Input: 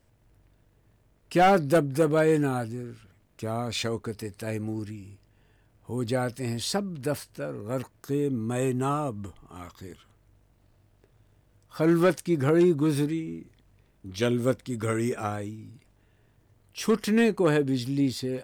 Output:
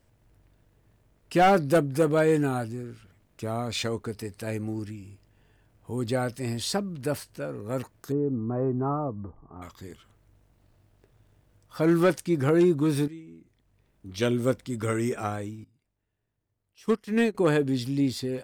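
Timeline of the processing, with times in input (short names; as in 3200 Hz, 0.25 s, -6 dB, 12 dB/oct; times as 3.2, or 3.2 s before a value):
8.12–9.62 LPF 1200 Hz 24 dB/oct
13.08–14.2 fade in quadratic, from -12.5 dB
15.64–17.35 upward expander 2.5:1, over -31 dBFS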